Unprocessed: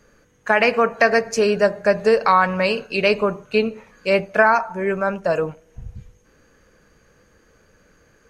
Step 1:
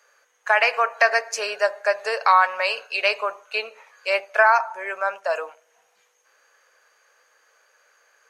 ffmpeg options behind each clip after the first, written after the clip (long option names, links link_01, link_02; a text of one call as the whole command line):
ffmpeg -i in.wav -af "highpass=frequency=650:width=0.5412,highpass=frequency=650:width=1.3066" out.wav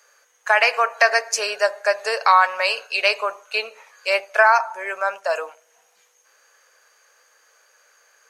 ffmpeg -i in.wav -af "bass=frequency=250:gain=-1,treble=frequency=4000:gain=6,volume=1.5dB" out.wav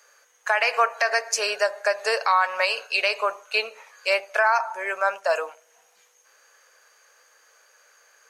ffmpeg -i in.wav -af "alimiter=limit=-9.5dB:level=0:latency=1:release=145" out.wav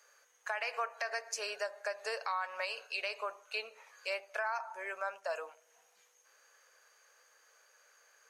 ffmpeg -i in.wav -af "acompressor=threshold=-38dB:ratio=1.5,volume=-8dB" out.wav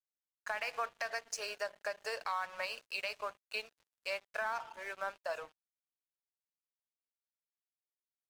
ffmpeg -i in.wav -af "aeval=exprs='sgn(val(0))*max(abs(val(0))-0.00299,0)':channel_layout=same" out.wav